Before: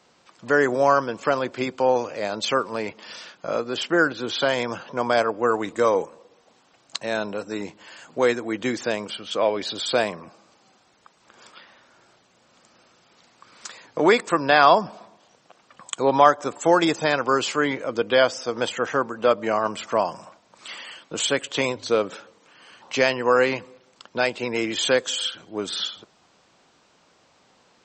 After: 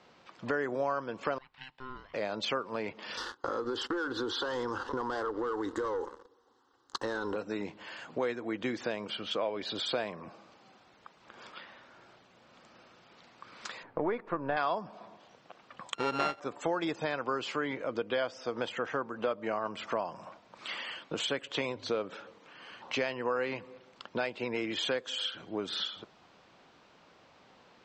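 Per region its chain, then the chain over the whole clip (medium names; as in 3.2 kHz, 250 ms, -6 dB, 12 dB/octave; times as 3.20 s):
1.38–2.14 s: boxcar filter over 7 samples + differentiator + ring modulator 520 Hz
3.17–7.36 s: waveshaping leveller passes 3 + static phaser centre 640 Hz, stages 6 + compression 4:1, threshold -24 dBFS
13.83–14.57 s: partial rectifier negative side -3 dB + low-pass 1.6 kHz
15.94–16.40 s: sorted samples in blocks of 32 samples + low-pass 6.8 kHz
whole clip: low-pass 3.9 kHz 12 dB/octave; compression 3:1, threshold -33 dBFS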